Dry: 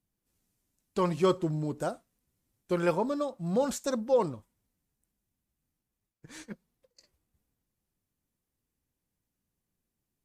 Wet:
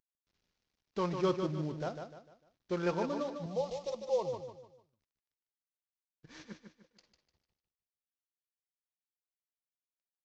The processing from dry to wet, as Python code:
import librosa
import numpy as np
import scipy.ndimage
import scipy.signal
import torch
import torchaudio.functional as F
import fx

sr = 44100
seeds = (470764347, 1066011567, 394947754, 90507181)

y = fx.cvsd(x, sr, bps=32000)
y = fx.fixed_phaser(y, sr, hz=630.0, stages=4, at=(3.46, 4.33))
y = fx.echo_feedback(y, sr, ms=150, feedback_pct=37, wet_db=-7.0)
y = F.gain(torch.from_numpy(y), -5.5).numpy()